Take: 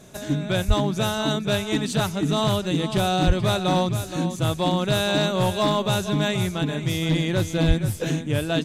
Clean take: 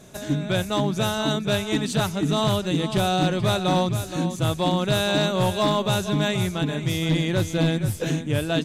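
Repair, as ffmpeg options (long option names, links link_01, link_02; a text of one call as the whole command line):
ffmpeg -i in.wav -filter_complex "[0:a]asplit=3[link_01][link_02][link_03];[link_01]afade=type=out:start_time=0.67:duration=0.02[link_04];[link_02]highpass=frequency=140:width=0.5412,highpass=frequency=140:width=1.3066,afade=type=in:start_time=0.67:duration=0.02,afade=type=out:start_time=0.79:duration=0.02[link_05];[link_03]afade=type=in:start_time=0.79:duration=0.02[link_06];[link_04][link_05][link_06]amix=inputs=3:normalize=0,asplit=3[link_07][link_08][link_09];[link_07]afade=type=out:start_time=3.26:duration=0.02[link_10];[link_08]highpass=frequency=140:width=0.5412,highpass=frequency=140:width=1.3066,afade=type=in:start_time=3.26:duration=0.02,afade=type=out:start_time=3.38:duration=0.02[link_11];[link_09]afade=type=in:start_time=3.38:duration=0.02[link_12];[link_10][link_11][link_12]amix=inputs=3:normalize=0,asplit=3[link_13][link_14][link_15];[link_13]afade=type=out:start_time=7.67:duration=0.02[link_16];[link_14]highpass=frequency=140:width=0.5412,highpass=frequency=140:width=1.3066,afade=type=in:start_time=7.67:duration=0.02,afade=type=out:start_time=7.79:duration=0.02[link_17];[link_15]afade=type=in:start_time=7.79:duration=0.02[link_18];[link_16][link_17][link_18]amix=inputs=3:normalize=0" out.wav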